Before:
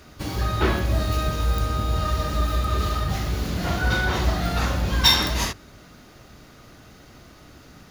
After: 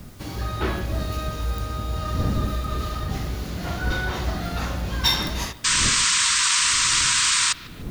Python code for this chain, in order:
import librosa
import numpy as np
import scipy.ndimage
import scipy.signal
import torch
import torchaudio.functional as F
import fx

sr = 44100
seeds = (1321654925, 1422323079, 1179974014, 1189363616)

p1 = fx.dmg_wind(x, sr, seeds[0], corner_hz=170.0, level_db=-30.0)
p2 = fx.spec_paint(p1, sr, seeds[1], shape='noise', start_s=5.64, length_s=1.89, low_hz=940.0, high_hz=8900.0, level_db=-16.0)
p3 = fx.quant_dither(p2, sr, seeds[2], bits=6, dither='triangular')
p4 = p2 + F.gain(torch.from_numpy(p3), -12.0).numpy()
p5 = fx.echo_bbd(p4, sr, ms=149, stages=4096, feedback_pct=50, wet_db=-19)
y = F.gain(torch.from_numpy(p5), -6.0).numpy()